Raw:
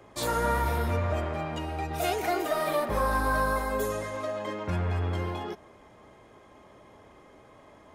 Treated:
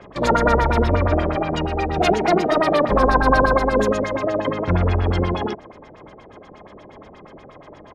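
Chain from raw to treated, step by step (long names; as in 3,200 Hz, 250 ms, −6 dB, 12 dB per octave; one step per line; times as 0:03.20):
auto-filter low-pass sine 8.4 Hz 400–5,800 Hz
pitch-shifted copies added −12 semitones −6 dB, −7 semitones −15 dB
level +8 dB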